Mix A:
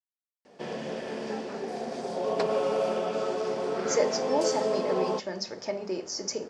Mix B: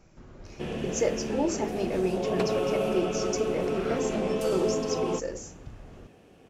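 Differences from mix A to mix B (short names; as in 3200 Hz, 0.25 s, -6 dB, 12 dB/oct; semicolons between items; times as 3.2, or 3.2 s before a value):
speech: entry -2.95 s; master: remove speaker cabinet 240–8600 Hz, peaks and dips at 330 Hz -6 dB, 600 Hz +4 dB, 920 Hz +5 dB, 1800 Hz +3 dB, 2700 Hz -7 dB, 4800 Hz +9 dB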